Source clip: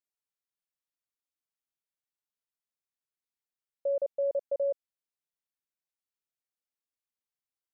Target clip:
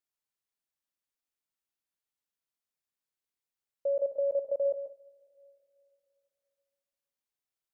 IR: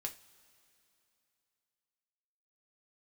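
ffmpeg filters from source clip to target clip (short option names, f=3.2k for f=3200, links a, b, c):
-filter_complex "[0:a]asplit=2[a][b];[1:a]atrim=start_sample=2205,adelay=138[c];[b][c]afir=irnorm=-1:irlink=0,volume=-6.5dB[d];[a][d]amix=inputs=2:normalize=0"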